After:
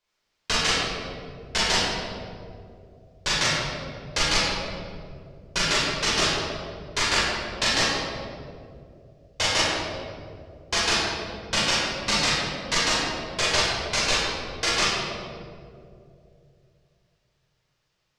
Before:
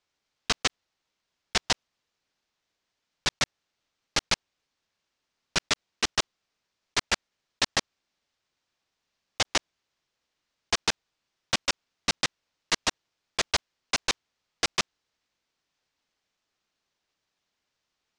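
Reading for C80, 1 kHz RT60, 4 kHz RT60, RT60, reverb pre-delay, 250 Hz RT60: −0.5 dB, 2.0 s, 1.2 s, 2.6 s, 23 ms, 3.1 s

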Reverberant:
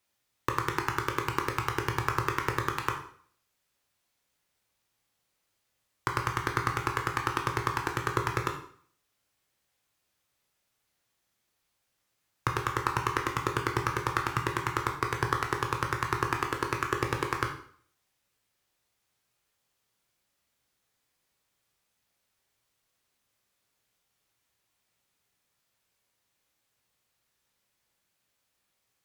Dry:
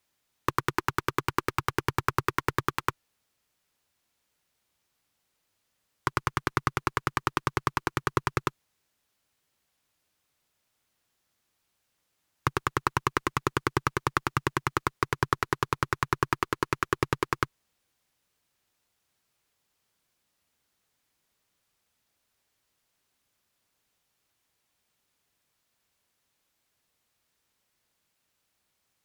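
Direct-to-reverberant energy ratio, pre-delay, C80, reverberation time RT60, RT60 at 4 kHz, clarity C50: 1.5 dB, 7 ms, 11.5 dB, 0.55 s, 0.50 s, 7.5 dB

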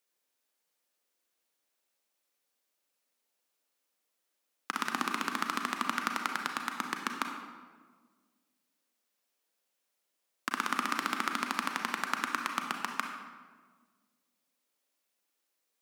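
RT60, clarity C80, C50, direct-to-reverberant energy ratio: 1.5 s, 6.5 dB, 4.5 dB, 3.0 dB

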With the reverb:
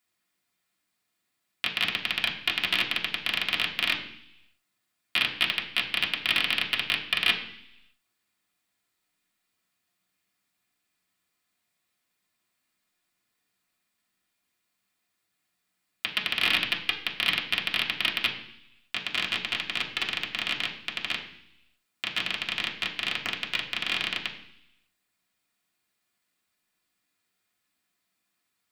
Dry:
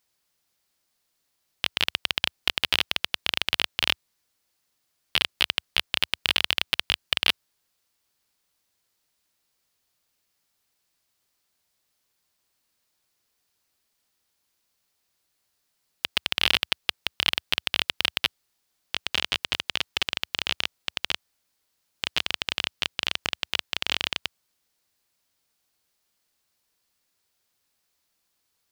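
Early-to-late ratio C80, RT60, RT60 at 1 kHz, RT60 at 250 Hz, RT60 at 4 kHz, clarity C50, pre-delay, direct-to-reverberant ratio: 12.0 dB, 0.70 s, 0.75 s, 0.90 s, 1.0 s, 9.5 dB, 3 ms, −3.0 dB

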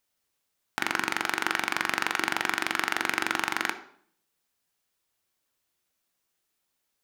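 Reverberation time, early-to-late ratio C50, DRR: 0.55 s, 12.5 dB, 8.0 dB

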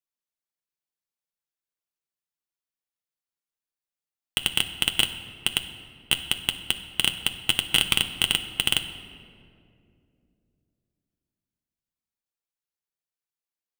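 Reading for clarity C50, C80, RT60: 10.5 dB, 12.0 dB, 2.6 s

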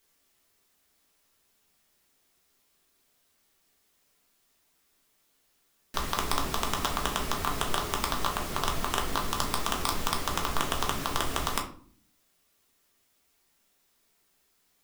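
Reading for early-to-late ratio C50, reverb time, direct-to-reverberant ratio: 10.5 dB, 0.50 s, 1.0 dB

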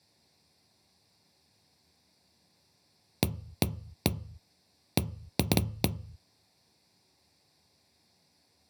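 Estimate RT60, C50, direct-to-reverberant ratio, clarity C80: 0.45 s, 19.0 dB, 9.5 dB, 23.5 dB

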